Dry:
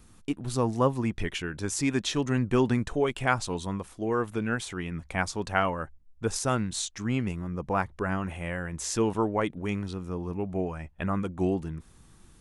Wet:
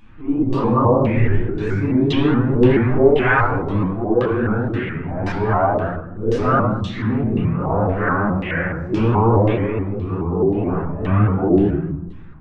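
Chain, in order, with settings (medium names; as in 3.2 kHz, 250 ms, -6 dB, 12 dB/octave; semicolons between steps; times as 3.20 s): phase randomisation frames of 200 ms; in parallel at +2 dB: peak limiter -21 dBFS, peak gain reduction 8 dB; on the sum: LFO low-pass saw down 1.9 Hz 350–3200 Hz; reverberation RT60 0.75 s, pre-delay 9 ms, DRR -6 dB; vibrato with a chosen wave saw up 4.7 Hz, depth 160 cents; trim -8 dB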